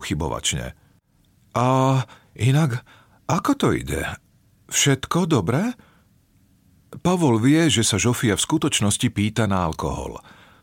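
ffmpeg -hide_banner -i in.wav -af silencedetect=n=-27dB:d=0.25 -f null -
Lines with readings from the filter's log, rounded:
silence_start: 0.68
silence_end: 1.55 | silence_duration: 0.86
silence_start: 2.03
silence_end: 2.39 | silence_duration: 0.36
silence_start: 2.78
silence_end: 3.29 | silence_duration: 0.51
silence_start: 4.15
silence_end: 4.72 | silence_duration: 0.57
silence_start: 5.71
silence_end: 6.93 | silence_duration: 1.21
silence_start: 10.16
silence_end: 10.62 | silence_duration: 0.46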